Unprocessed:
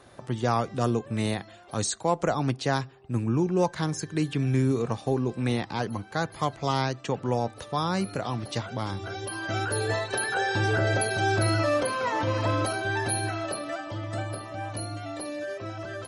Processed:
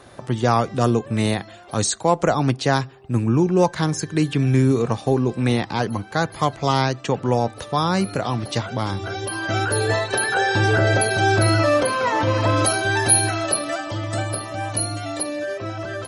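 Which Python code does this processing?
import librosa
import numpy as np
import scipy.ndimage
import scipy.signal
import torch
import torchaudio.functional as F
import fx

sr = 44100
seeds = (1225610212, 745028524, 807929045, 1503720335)

y = fx.high_shelf(x, sr, hz=4800.0, db=10.0, at=(12.56, 15.23))
y = y * librosa.db_to_amplitude(7.0)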